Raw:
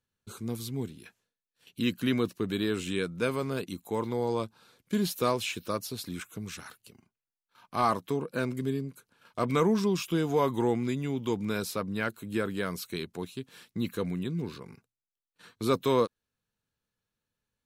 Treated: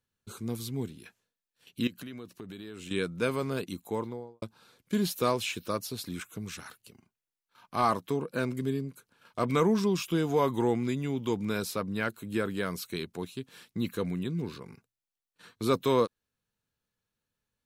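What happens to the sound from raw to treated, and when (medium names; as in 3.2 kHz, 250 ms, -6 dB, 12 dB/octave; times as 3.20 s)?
1.87–2.91 s: compression, threshold -40 dBFS
3.82–4.42 s: studio fade out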